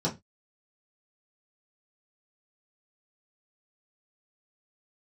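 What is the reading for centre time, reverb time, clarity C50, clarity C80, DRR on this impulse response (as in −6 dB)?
16 ms, 0.20 s, 15.5 dB, 24.0 dB, −6.0 dB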